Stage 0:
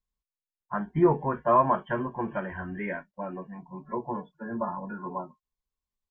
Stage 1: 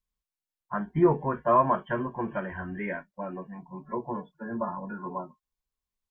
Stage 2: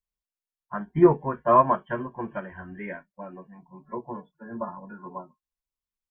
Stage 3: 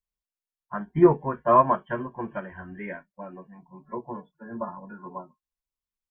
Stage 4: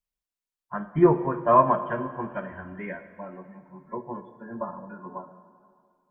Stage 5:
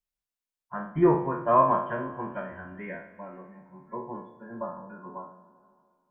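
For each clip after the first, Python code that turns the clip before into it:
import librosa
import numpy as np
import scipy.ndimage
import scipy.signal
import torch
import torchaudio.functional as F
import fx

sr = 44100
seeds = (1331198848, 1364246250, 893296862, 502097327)

y1 = fx.dynamic_eq(x, sr, hz=830.0, q=7.3, threshold_db=-46.0, ratio=4.0, max_db=-4)
y2 = fx.upward_expand(y1, sr, threshold_db=-39.0, expansion=1.5)
y2 = y2 * 10.0 ** (5.5 / 20.0)
y3 = y2
y4 = fx.rev_plate(y3, sr, seeds[0], rt60_s=2.2, hf_ratio=0.8, predelay_ms=0, drr_db=10.5)
y5 = fx.spec_trails(y4, sr, decay_s=0.52)
y5 = y5 * 10.0 ** (-4.0 / 20.0)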